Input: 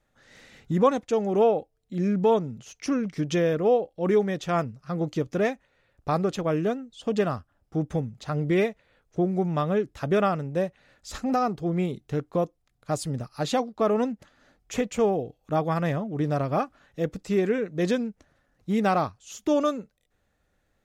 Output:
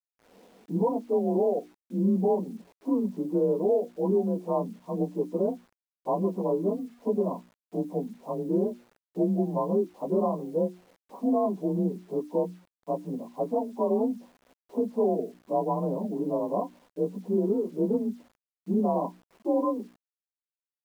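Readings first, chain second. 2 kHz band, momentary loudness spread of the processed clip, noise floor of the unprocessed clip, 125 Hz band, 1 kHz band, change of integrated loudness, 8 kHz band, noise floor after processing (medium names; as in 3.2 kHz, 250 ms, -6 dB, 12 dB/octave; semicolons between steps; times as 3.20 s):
under -25 dB, 10 LU, -72 dBFS, -5.5 dB, -5.0 dB, -2.0 dB, under -15 dB, under -85 dBFS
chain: frequency axis rescaled in octaves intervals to 91%; in parallel at +1 dB: compression 8:1, threshold -34 dBFS, peak gain reduction 17.5 dB; on the sum: hum notches 60/120/180/240/300/360 Hz; expander -52 dBFS; Chebyshev band-pass 180–1000 Hz, order 5; distance through air 52 m; peak limiter -16.5 dBFS, peak gain reduction 7 dB; bit crusher 10-bit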